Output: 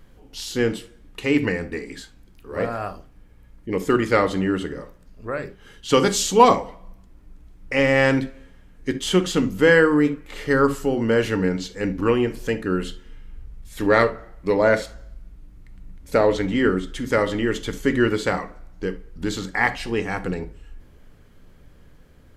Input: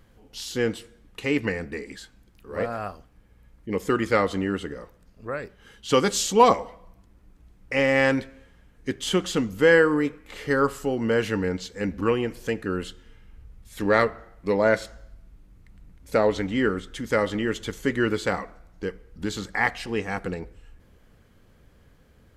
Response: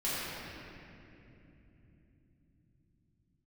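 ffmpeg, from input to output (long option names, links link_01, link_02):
-filter_complex "[0:a]asplit=2[link_01][link_02];[1:a]atrim=start_sample=2205,atrim=end_sample=3528,lowshelf=frequency=360:gain=9.5[link_03];[link_02][link_03]afir=irnorm=-1:irlink=0,volume=-13dB[link_04];[link_01][link_04]amix=inputs=2:normalize=0,volume=1.5dB"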